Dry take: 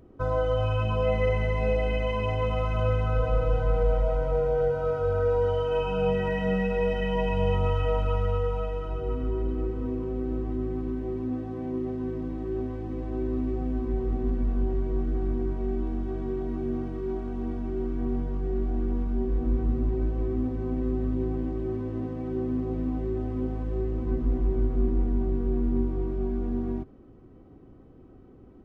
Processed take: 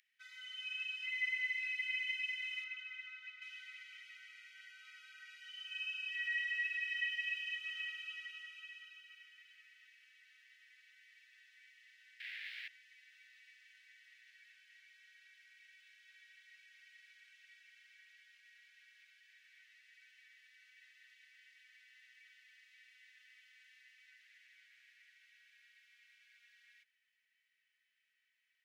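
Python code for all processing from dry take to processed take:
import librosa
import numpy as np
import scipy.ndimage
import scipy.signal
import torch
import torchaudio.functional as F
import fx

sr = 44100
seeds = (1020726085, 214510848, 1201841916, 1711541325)

y = fx.chain(x, sr, fx.lowpass(hz=1500.0, slope=6),
    fx.env_flatten(amount_pct=50), at=(2.64, 3.42))
y = fx.chain(y, sr, fx.highpass(hz=57.0, slope=12),
    fx.quant_companded(bits=2),
    fx.air_absorb(metres=420.0), at=(12.2, 12.68))
y = scipy.signal.sosfilt(scipy.signal.butter(12, 1800.0, 'highpass', fs=sr, output='sos'), y)
y = fx.high_shelf(y, sr, hz=2300.0, db=-9.5)
y = y * 10.0 ** (6.0 / 20.0)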